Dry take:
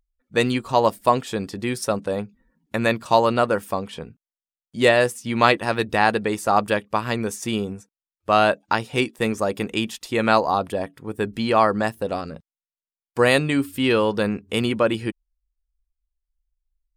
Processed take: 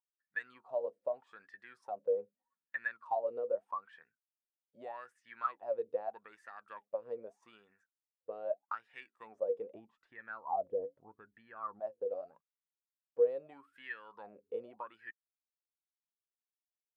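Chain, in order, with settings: 9.74–11.8 tilt -4.5 dB/oct; compressor 3:1, threshold -21 dBFS, peak gain reduction 9.5 dB; wah 0.81 Hz 470–1800 Hz, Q 21

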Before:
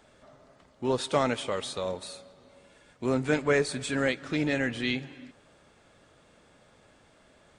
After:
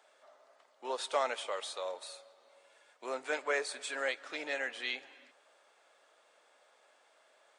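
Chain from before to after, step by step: ladder high-pass 460 Hz, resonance 20%

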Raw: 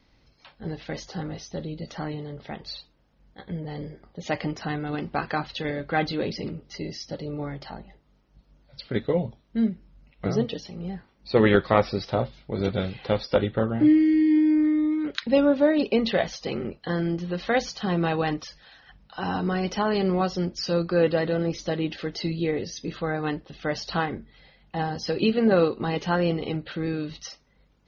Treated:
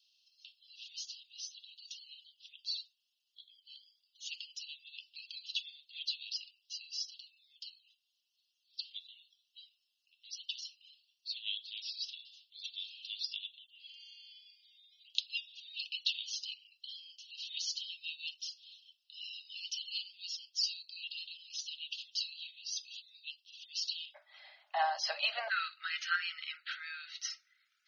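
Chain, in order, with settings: Chebyshev high-pass 2700 Hz, order 8, from 24.14 s 590 Hz, from 25.48 s 1300 Hz

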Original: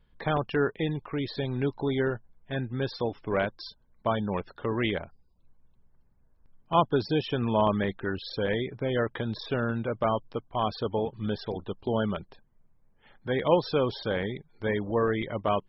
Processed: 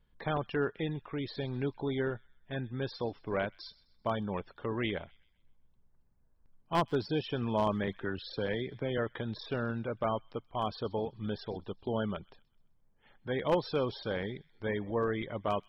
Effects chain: one-sided fold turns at -17 dBFS; thin delay 0.128 s, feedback 41%, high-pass 2600 Hz, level -19 dB; 7.87–8.98 three-band squash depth 40%; gain -5.5 dB

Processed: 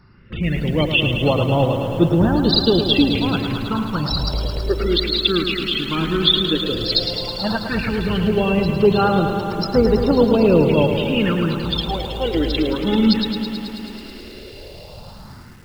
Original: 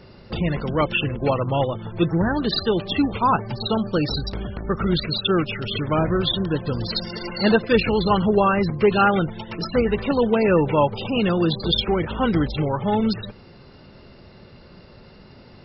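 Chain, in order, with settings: bell 3100 Hz +5 dB 0.9 oct; AGC gain up to 13 dB; analogue delay 0.241 s, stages 4096, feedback 71%, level -17 dB; phaser stages 4, 0.13 Hz, lowest notch 100–2600 Hz; lo-fi delay 0.108 s, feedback 80%, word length 7-bit, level -8 dB; gain -2.5 dB

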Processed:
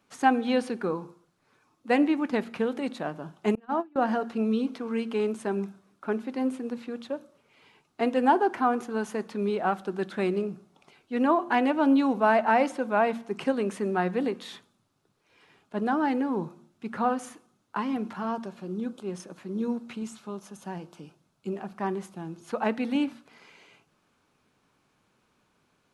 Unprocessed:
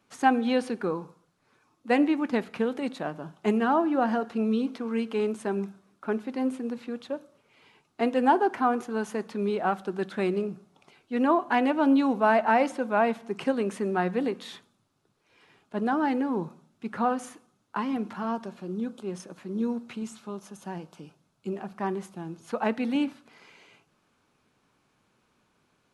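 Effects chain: de-hum 115.8 Hz, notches 3; 3.55–3.96 gate -21 dBFS, range -32 dB

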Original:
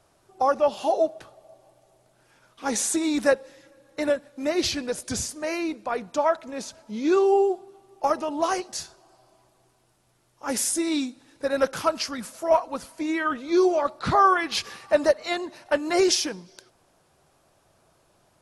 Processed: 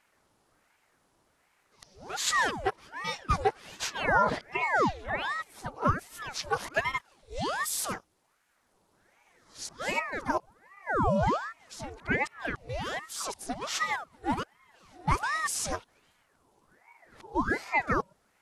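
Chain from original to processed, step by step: whole clip reversed; ring modulator with a swept carrier 890 Hz, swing 80%, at 1.3 Hz; gain -3.5 dB

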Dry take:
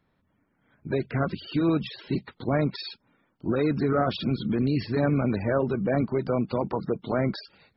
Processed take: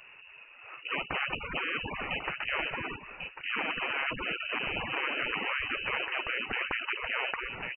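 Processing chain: inverted band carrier 2800 Hz; on a send: echo 1.096 s -19.5 dB; on the sum: spectral compressor 4:1; gain -5 dB

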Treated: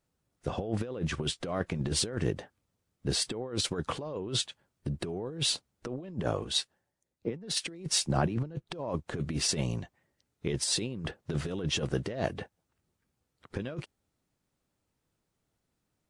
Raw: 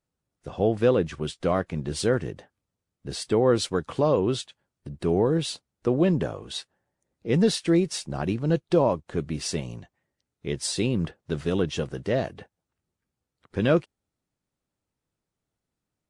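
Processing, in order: limiter -17.5 dBFS, peak gain reduction 8 dB; negative-ratio compressor -31 dBFS, ratio -0.5; 6.44–8.67 three-band expander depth 40%

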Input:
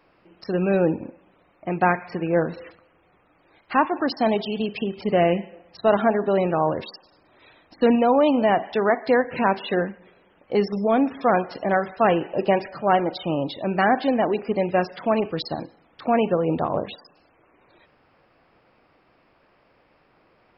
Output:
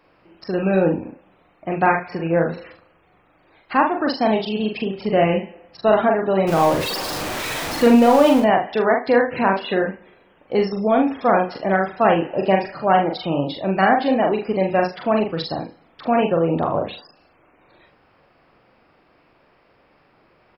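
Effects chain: 6.47–8.4 zero-crossing step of -24 dBFS; early reflections 42 ms -3.5 dB, 75 ms -14.5 dB; gain +1.5 dB

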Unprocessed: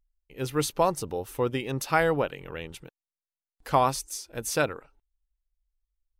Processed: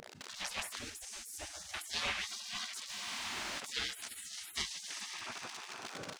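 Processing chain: zero-crossing step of -30.5 dBFS; air absorption 110 m; 4.16–4.56 compressor 2.5:1, threshold -34 dBFS, peak gain reduction 5.5 dB; resonator 190 Hz, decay 1.4 s, mix 40%; soft clip -16.5 dBFS, distortion -21 dB; notches 50/100/150/200/250 Hz; 2.26–2.72 comb 2.3 ms, depth 68%; diffused feedback echo 0.481 s, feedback 41%, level -12 dB; Schroeder reverb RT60 0.47 s, combs from 26 ms, DRR 15.5 dB; spectral gate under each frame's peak -30 dB weak; 0.79–1.74 band shelf 2000 Hz -11.5 dB 2.7 oct; ending taper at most 160 dB/s; gain +13 dB

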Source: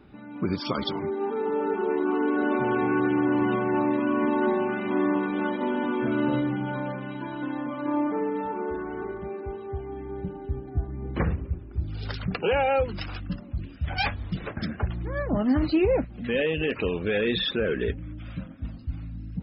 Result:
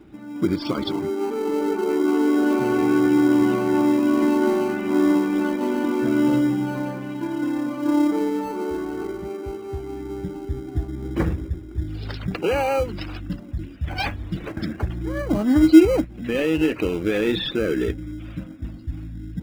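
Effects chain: bell 320 Hz +13 dB 0.21 oct; in parallel at -11.5 dB: sample-and-hold 25×

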